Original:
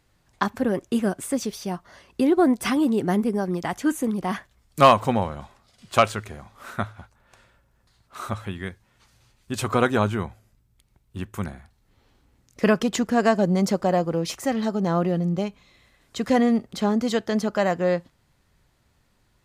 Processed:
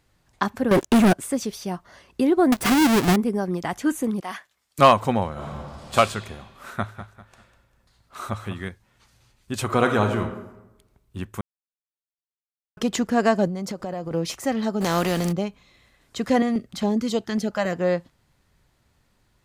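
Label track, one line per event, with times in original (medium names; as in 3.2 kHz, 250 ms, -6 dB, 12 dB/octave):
0.710000	1.130000	waveshaping leveller passes 5
2.520000	3.160000	square wave that keeps the level
4.200000	4.790000	high-pass 1.2 kHz 6 dB/octave
5.320000	5.950000	reverb throw, RT60 2.2 s, DRR -7.5 dB
6.680000	8.680000	feedback delay 198 ms, feedback 34%, level -12 dB
9.640000	10.220000	reverb throw, RT60 1 s, DRR 5 dB
11.410000	12.770000	mute
13.470000	14.110000	compression 10:1, threshold -26 dBFS
14.800000	15.310000	spectral contrast reduction exponent 0.57
16.420000	17.730000	step-sequenced notch 7.3 Hz 350–1700 Hz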